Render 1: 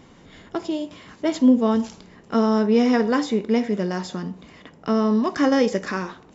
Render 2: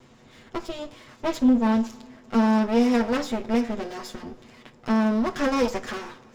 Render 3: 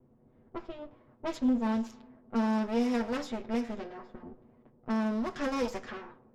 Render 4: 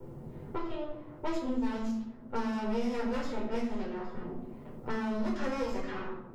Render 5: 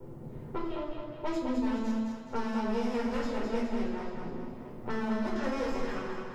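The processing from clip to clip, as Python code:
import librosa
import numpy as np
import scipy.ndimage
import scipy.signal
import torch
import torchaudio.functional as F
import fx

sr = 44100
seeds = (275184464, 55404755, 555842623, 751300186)

y1 = fx.lower_of_two(x, sr, delay_ms=8.1)
y1 = fx.rev_double_slope(y1, sr, seeds[0], early_s=0.23, late_s=3.9, knee_db=-20, drr_db=15.0)
y1 = y1 * librosa.db_to_amplitude(-2.5)
y2 = fx.env_lowpass(y1, sr, base_hz=510.0, full_db=-21.0)
y2 = y2 * librosa.db_to_amplitude(-8.5)
y3 = fx.room_shoebox(y2, sr, seeds[1], volume_m3=760.0, walls='furnished', distance_m=4.5)
y3 = fx.band_squash(y3, sr, depth_pct=70)
y3 = y3 * librosa.db_to_amplitude(-7.0)
y4 = fx.echo_split(y3, sr, split_hz=430.0, low_ms=89, high_ms=210, feedback_pct=52, wet_db=-4.5)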